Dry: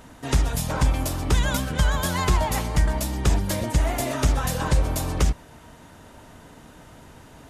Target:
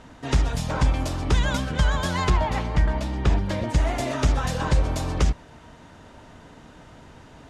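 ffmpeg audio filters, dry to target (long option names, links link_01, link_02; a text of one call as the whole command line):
ffmpeg -i in.wav -af "asetnsamples=nb_out_samples=441:pad=0,asendcmd='2.3 lowpass f 3500;3.69 lowpass f 6100',lowpass=5900" out.wav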